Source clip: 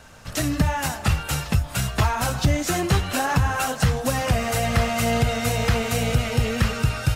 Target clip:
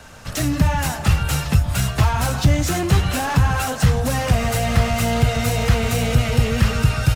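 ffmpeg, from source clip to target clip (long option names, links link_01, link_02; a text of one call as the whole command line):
ffmpeg -i in.wav -filter_complex "[0:a]acrossover=split=200[link_01][link_02];[link_01]aecho=1:1:135:0.398[link_03];[link_02]asoftclip=type=tanh:threshold=-24.5dB[link_04];[link_03][link_04]amix=inputs=2:normalize=0,volume=5dB" out.wav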